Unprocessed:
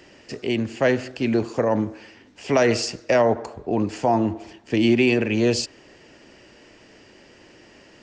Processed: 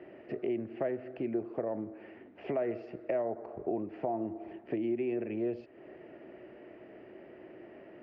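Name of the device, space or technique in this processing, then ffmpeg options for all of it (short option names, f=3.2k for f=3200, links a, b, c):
bass amplifier: -af "acompressor=threshold=-33dB:ratio=5,highpass=79,equalizer=f=90:t=q:w=4:g=-6,equalizer=f=360:t=q:w=4:g=9,equalizer=f=650:t=q:w=4:g=9,equalizer=f=980:t=q:w=4:g=-5,equalizer=f=1.6k:t=q:w=4:g=-4,lowpass=f=2.1k:w=0.5412,lowpass=f=2.1k:w=1.3066,volume=-4dB"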